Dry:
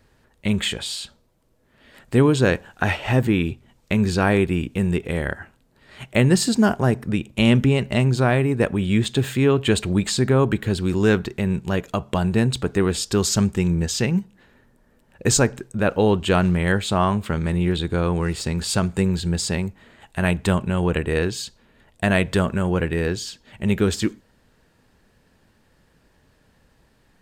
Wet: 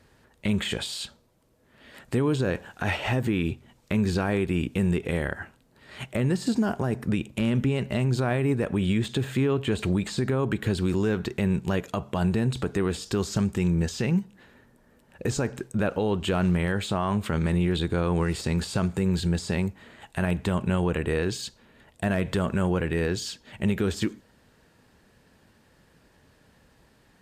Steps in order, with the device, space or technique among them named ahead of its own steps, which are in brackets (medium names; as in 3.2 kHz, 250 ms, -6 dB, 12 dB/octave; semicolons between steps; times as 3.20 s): 9.17–9.79 s: de-esser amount 85%; podcast mastering chain (high-pass 60 Hz 6 dB/octave; de-esser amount 70%; compression 2.5:1, threshold -21 dBFS, peak gain reduction 7 dB; peak limiter -17 dBFS, peak gain reduction 8.5 dB; trim +1.5 dB; MP3 96 kbps 32 kHz)